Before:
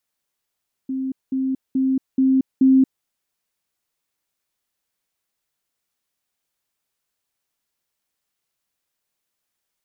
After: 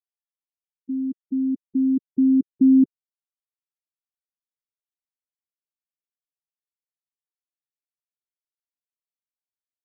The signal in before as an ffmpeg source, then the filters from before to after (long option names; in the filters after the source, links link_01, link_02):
-f lavfi -i "aevalsrc='pow(10,(-22+3*floor(t/0.43))/20)*sin(2*PI*264*t)*clip(min(mod(t,0.43),0.23-mod(t,0.43))/0.005,0,1)':duration=2.15:sample_rate=44100"
-af "afftfilt=real='re*gte(hypot(re,im),0.178)':imag='im*gte(hypot(re,im),0.178)':win_size=1024:overlap=0.75"